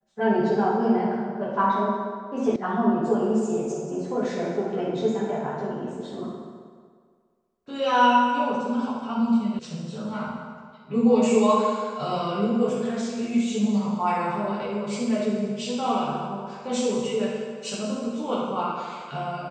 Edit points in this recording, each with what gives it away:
2.56 sound cut off
9.59 sound cut off

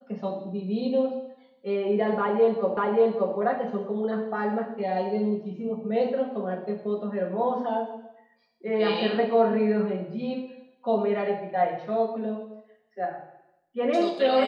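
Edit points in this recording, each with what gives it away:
2.77 repeat of the last 0.58 s

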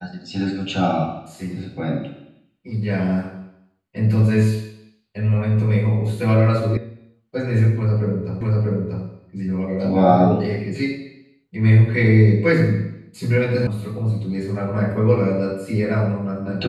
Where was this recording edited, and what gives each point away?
6.77 sound cut off
8.41 repeat of the last 0.64 s
13.67 sound cut off

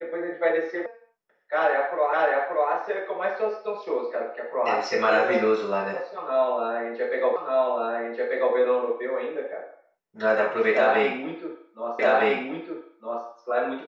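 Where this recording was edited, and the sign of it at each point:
0.86 sound cut off
2.13 repeat of the last 0.58 s
7.36 repeat of the last 1.19 s
11.99 repeat of the last 1.26 s

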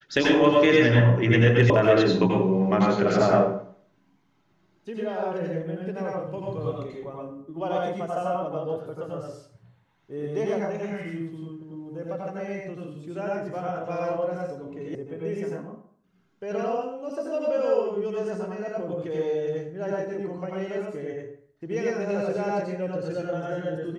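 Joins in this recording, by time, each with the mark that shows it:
1.7 sound cut off
14.95 sound cut off

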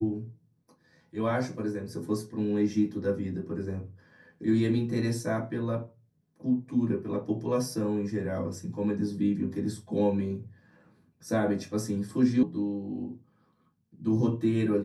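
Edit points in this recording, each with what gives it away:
12.43 sound cut off

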